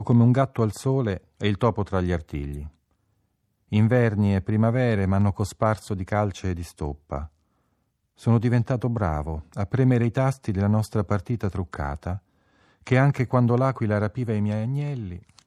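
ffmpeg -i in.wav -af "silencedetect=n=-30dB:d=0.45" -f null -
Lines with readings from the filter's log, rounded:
silence_start: 2.66
silence_end: 3.72 | silence_duration: 1.06
silence_start: 7.25
silence_end: 8.27 | silence_duration: 1.02
silence_start: 12.16
silence_end: 12.87 | silence_duration: 0.71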